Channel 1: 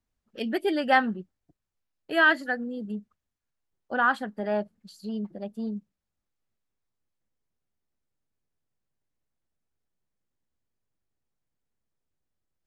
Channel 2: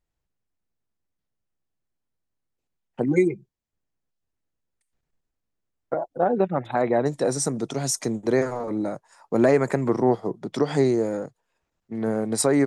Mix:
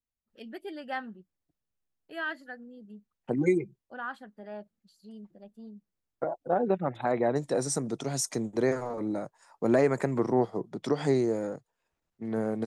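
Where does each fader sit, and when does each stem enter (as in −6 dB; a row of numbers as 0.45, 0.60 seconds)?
−14.0, −5.0 decibels; 0.00, 0.30 seconds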